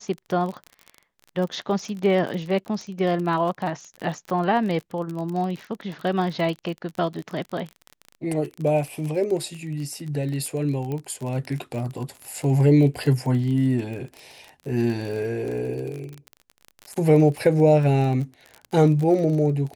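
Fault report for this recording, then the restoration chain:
crackle 30/s -29 dBFS
10.92 pop -19 dBFS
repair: de-click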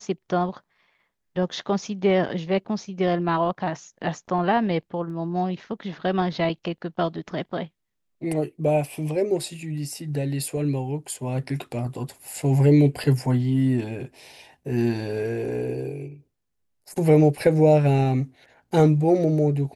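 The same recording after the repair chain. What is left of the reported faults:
none

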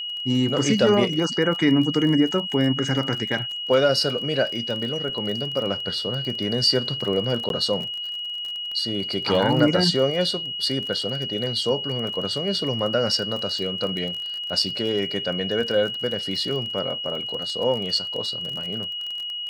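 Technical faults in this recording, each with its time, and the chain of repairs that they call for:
crackle 32/s -29 dBFS
tone 2900 Hz -28 dBFS
7.49–7.5 gap 12 ms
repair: de-click; notch 2900 Hz, Q 30; interpolate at 7.49, 12 ms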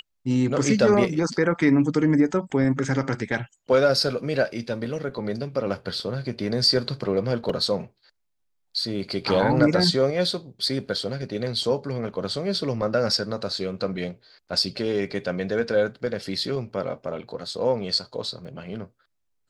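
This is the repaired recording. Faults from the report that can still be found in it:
none

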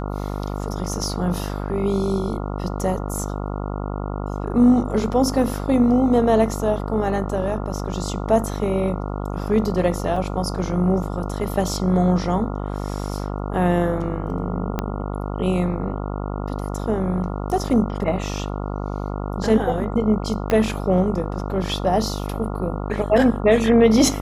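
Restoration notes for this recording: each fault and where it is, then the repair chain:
buzz 50 Hz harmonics 28 -27 dBFS
10.16 gap 3.3 ms
14.79 pop -9 dBFS
20.5 pop -8 dBFS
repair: de-click; de-hum 50 Hz, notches 28; interpolate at 10.16, 3.3 ms

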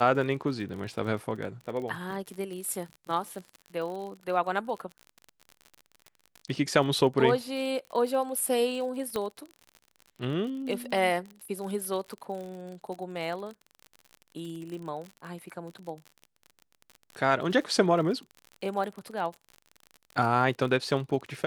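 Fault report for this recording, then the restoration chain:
crackle 47/s -36 dBFS
9.16 pop -17 dBFS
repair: de-click

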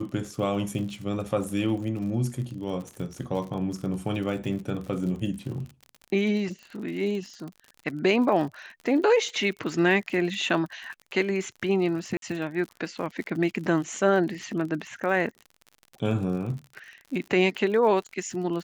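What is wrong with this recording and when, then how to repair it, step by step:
crackle 53/s -35 dBFS
12.17–12.22 gap 52 ms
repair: de-click; interpolate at 12.17, 52 ms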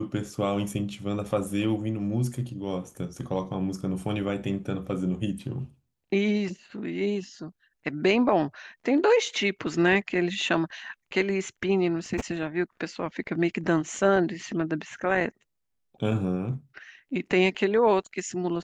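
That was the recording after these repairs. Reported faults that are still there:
none

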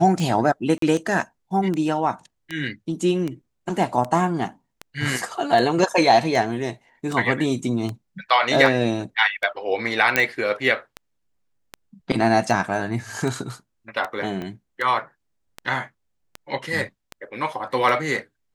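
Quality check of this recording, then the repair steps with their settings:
tick 78 rpm -15 dBFS
0.78–0.82 gap 43 ms
10.16 pop -2 dBFS
14.42 pop -19 dBFS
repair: de-click; interpolate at 0.78, 43 ms

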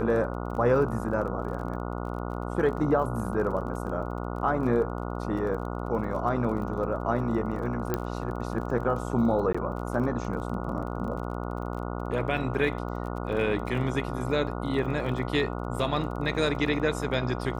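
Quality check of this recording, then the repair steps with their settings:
buzz 60 Hz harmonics 24 -33 dBFS
crackle 27/s -37 dBFS
7.94 pop -13 dBFS
9.53–9.54 gap 15 ms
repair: de-click; de-hum 60 Hz, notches 24; interpolate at 9.53, 15 ms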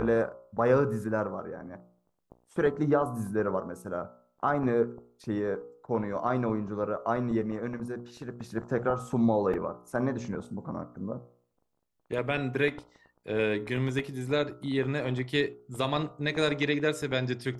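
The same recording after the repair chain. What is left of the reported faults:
none

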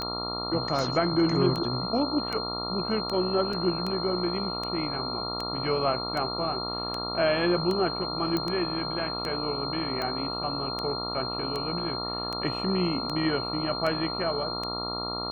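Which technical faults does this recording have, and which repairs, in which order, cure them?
buzz 60 Hz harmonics 23 -35 dBFS
tick 78 rpm -18 dBFS
tone 4200 Hz -33 dBFS
3.53 gap 3.9 ms
8.37 pop -15 dBFS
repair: de-click; de-hum 60 Hz, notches 23; notch 4200 Hz, Q 30; interpolate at 3.53, 3.9 ms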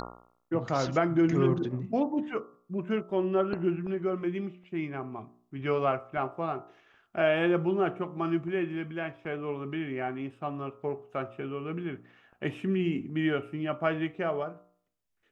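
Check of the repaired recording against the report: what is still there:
none

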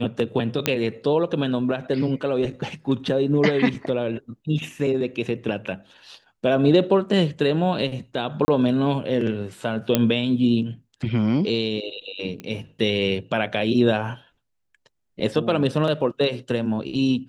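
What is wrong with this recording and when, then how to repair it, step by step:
0.66 pop -4 dBFS
8.45–8.48 gap 30 ms
9.95 pop -3 dBFS
12.4 pop -20 dBFS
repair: de-click; interpolate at 8.45, 30 ms

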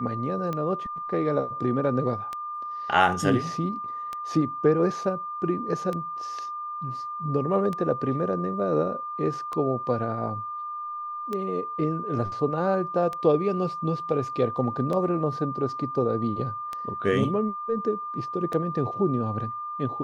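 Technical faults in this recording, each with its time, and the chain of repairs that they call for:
tick 33 1/3 rpm -18 dBFS
tone 1200 Hz -31 dBFS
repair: de-click; notch 1200 Hz, Q 30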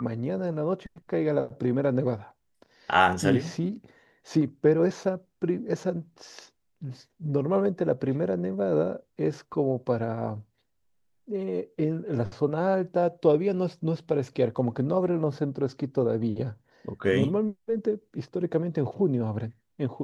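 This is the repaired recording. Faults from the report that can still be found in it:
none

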